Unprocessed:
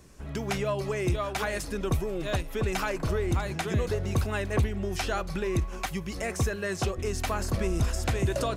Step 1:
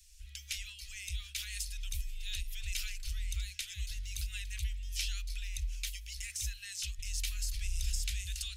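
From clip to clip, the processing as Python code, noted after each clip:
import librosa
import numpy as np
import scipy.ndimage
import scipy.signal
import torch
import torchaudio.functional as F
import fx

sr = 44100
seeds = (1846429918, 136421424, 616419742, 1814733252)

y = scipy.signal.sosfilt(scipy.signal.cheby2(4, 70, [180.0, 780.0], 'bandstop', fs=sr, output='sos'), x)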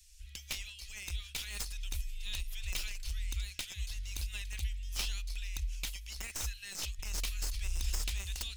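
y = fx.tracing_dist(x, sr, depth_ms=0.066)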